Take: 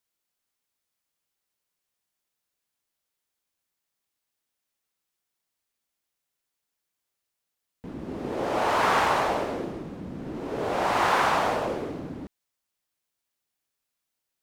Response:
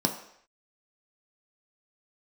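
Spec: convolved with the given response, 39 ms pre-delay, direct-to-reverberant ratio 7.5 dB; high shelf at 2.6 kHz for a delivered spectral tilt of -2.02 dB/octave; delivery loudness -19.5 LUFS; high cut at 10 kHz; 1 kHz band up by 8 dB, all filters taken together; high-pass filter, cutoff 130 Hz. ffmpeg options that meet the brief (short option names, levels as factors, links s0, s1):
-filter_complex "[0:a]highpass=130,lowpass=10000,equalizer=f=1000:t=o:g=9,highshelf=f=2600:g=4.5,asplit=2[s0][s1];[1:a]atrim=start_sample=2205,adelay=39[s2];[s1][s2]afir=irnorm=-1:irlink=0,volume=0.15[s3];[s0][s3]amix=inputs=2:normalize=0,volume=0.794"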